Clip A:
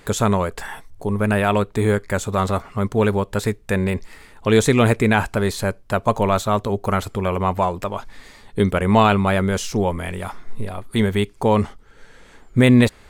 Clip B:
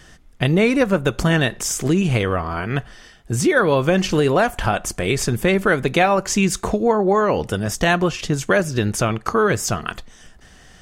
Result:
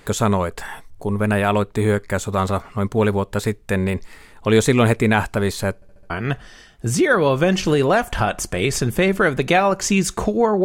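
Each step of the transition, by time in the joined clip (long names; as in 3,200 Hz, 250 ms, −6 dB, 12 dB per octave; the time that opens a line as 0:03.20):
clip A
0:05.75: stutter in place 0.07 s, 5 plays
0:06.10: continue with clip B from 0:02.56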